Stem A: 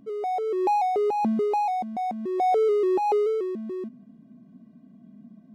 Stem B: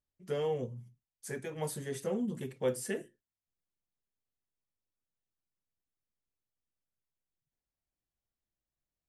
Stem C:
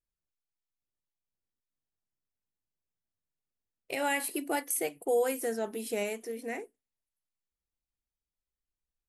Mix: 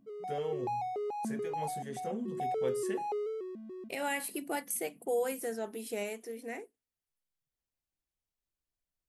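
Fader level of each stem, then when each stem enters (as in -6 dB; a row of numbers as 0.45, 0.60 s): -12.5, -4.5, -4.0 dB; 0.00, 0.00, 0.00 s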